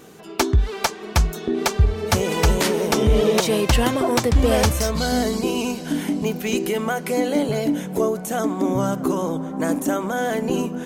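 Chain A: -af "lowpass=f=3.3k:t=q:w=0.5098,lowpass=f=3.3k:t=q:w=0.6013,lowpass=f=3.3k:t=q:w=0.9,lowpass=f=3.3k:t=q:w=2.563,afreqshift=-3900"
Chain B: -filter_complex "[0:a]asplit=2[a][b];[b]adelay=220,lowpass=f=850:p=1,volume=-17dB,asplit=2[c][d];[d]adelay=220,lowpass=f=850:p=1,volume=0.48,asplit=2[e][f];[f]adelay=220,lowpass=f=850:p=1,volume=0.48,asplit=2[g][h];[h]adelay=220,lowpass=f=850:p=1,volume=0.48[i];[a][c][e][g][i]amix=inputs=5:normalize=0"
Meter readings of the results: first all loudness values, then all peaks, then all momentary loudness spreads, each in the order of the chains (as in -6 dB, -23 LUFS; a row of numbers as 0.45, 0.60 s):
-17.5, -21.5 LUFS; -4.5, -5.5 dBFS; 7, 6 LU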